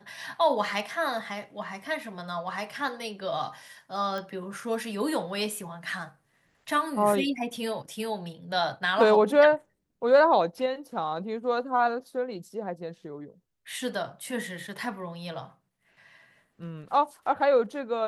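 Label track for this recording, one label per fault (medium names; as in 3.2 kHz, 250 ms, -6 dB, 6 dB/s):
4.180000	4.180000	pop -22 dBFS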